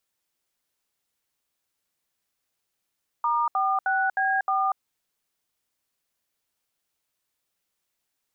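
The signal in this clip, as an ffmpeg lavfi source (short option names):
-f lavfi -i "aevalsrc='0.0668*clip(min(mod(t,0.31),0.239-mod(t,0.31))/0.002,0,1)*(eq(floor(t/0.31),0)*(sin(2*PI*941*mod(t,0.31))+sin(2*PI*1209*mod(t,0.31)))+eq(floor(t/0.31),1)*(sin(2*PI*770*mod(t,0.31))+sin(2*PI*1209*mod(t,0.31)))+eq(floor(t/0.31),2)*(sin(2*PI*770*mod(t,0.31))+sin(2*PI*1477*mod(t,0.31)))+eq(floor(t/0.31),3)*(sin(2*PI*770*mod(t,0.31))+sin(2*PI*1633*mod(t,0.31)))+eq(floor(t/0.31),4)*(sin(2*PI*770*mod(t,0.31))+sin(2*PI*1209*mod(t,0.31))))':d=1.55:s=44100"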